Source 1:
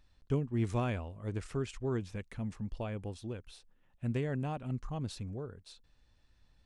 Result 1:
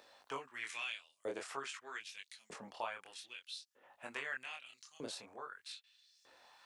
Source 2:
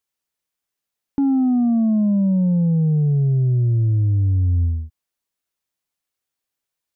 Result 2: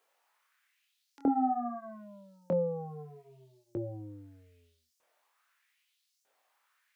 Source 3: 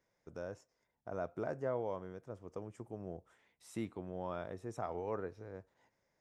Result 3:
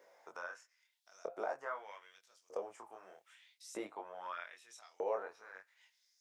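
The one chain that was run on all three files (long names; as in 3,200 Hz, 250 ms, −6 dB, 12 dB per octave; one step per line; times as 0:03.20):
auto-filter high-pass saw up 0.8 Hz 480–6,300 Hz
chorus effect 0.51 Hz, delay 19.5 ms, depth 7.2 ms
multiband upward and downward compressor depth 40%
level +5.5 dB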